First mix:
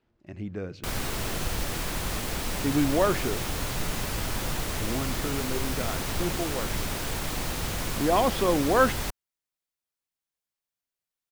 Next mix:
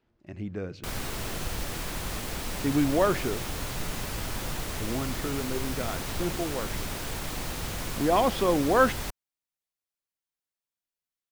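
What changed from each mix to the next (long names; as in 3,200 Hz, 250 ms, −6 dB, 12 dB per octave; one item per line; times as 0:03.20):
background −3.0 dB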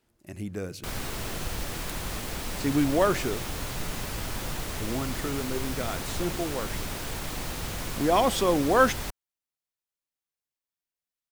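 speech: remove high-frequency loss of the air 200 metres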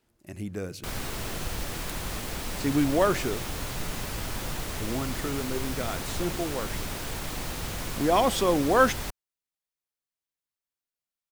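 nothing changed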